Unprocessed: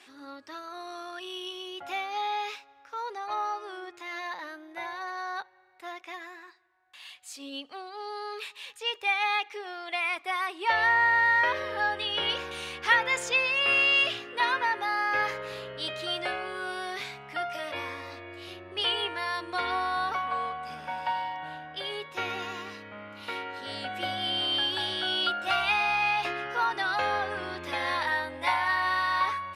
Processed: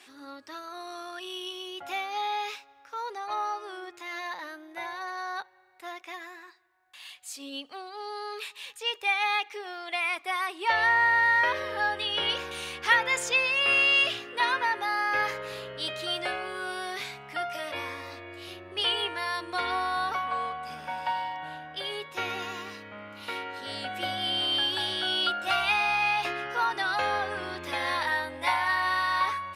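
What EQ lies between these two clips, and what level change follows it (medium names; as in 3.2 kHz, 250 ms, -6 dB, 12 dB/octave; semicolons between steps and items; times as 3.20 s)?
treble shelf 7.5 kHz +7 dB; 0.0 dB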